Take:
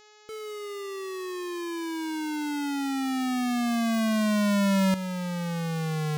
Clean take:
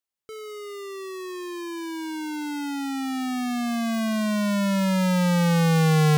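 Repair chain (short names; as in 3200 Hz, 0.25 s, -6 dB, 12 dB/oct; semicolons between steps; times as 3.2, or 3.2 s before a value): de-hum 423.1 Hz, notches 17; gain 0 dB, from 4.94 s +10.5 dB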